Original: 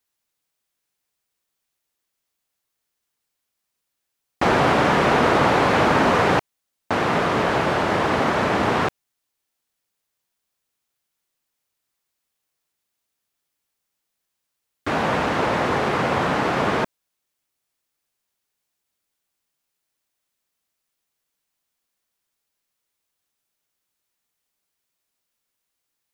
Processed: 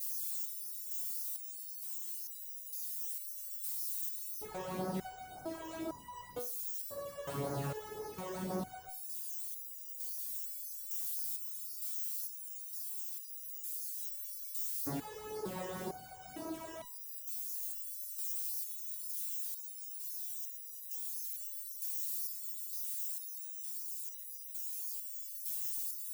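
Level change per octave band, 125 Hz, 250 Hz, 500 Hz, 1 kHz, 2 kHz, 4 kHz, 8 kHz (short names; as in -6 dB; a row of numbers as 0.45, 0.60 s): -18.5, -20.0, -21.5, -26.0, -30.0, -19.5, +1.5 dB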